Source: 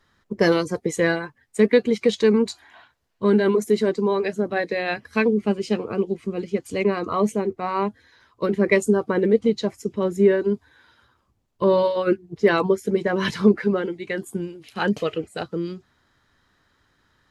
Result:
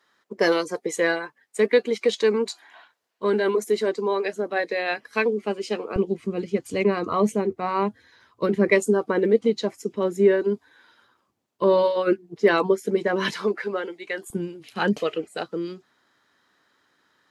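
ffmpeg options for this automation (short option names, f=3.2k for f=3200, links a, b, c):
-af "asetnsamples=n=441:p=0,asendcmd='5.96 highpass f 95;8.71 highpass f 230;13.33 highpass f 500;14.3 highpass f 120;14.96 highpass f 260',highpass=370"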